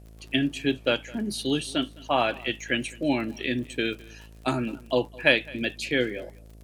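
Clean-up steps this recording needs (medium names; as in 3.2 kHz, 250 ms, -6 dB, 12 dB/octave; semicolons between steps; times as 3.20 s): de-click; de-hum 54.5 Hz, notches 13; expander -40 dBFS, range -21 dB; inverse comb 210 ms -23 dB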